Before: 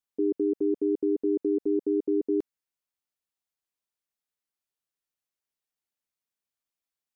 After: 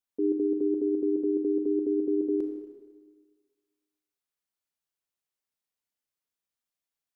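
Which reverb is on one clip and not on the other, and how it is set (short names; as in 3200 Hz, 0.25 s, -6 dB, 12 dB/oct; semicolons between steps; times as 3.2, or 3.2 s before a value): Schroeder reverb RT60 1.5 s, combs from 26 ms, DRR 4 dB; gain -2 dB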